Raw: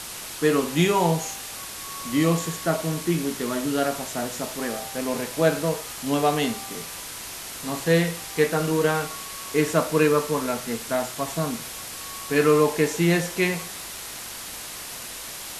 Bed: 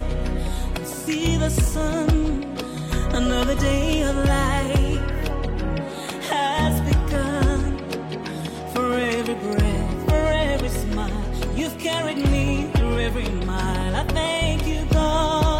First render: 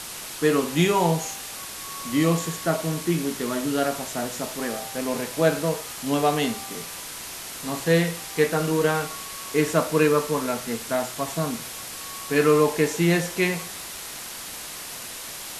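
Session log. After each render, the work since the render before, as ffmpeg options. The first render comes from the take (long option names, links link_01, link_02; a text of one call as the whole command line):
ffmpeg -i in.wav -af "bandreject=frequency=50:width_type=h:width=4,bandreject=frequency=100:width_type=h:width=4" out.wav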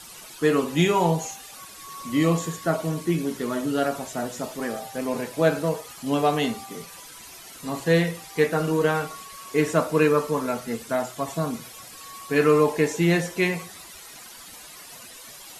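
ffmpeg -i in.wav -af "afftdn=noise_reduction=12:noise_floor=-37" out.wav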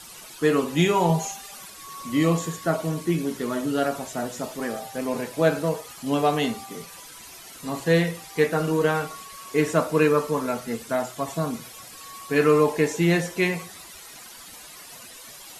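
ffmpeg -i in.wav -filter_complex "[0:a]asettb=1/sr,asplit=3[link_01][link_02][link_03];[link_01]atrim=end=1.094[link_04];[link_02]atrim=start=1.09:end=1.7,asetpts=PTS-STARTPTS,afade=type=in:duration=0.004:curve=qsin,afade=type=out:start_time=0.606:duration=0.004:curve=qsin,aecho=1:1:5:0.65,atrim=end_sample=26901[link_05];[link_03]atrim=start=1.696[link_06];[link_04][link_05]acrossfade=duration=0.004:curve1=hsin:curve2=qsin[link_07];[link_07][link_06]acrossfade=duration=0.004:curve1=qsin:curve2=hsin" out.wav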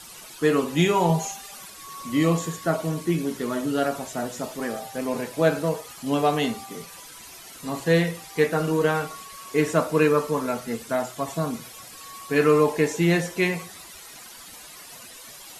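ffmpeg -i in.wav -af anull out.wav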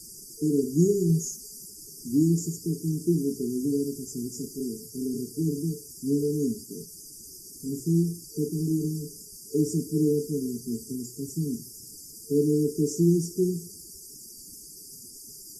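ffmpeg -i in.wav -af "afftfilt=real='re*(1-between(b*sr/4096,450,4600))':imag='im*(1-between(b*sr/4096,450,4600))':win_size=4096:overlap=0.75" out.wav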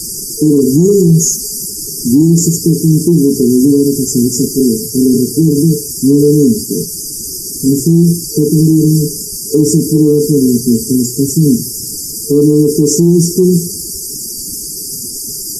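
ffmpeg -i in.wav -af "acontrast=23,alimiter=level_in=18dB:limit=-1dB:release=50:level=0:latency=1" out.wav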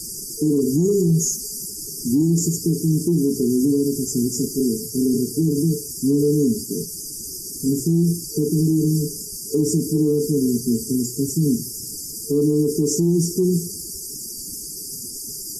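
ffmpeg -i in.wav -af "volume=-10dB" out.wav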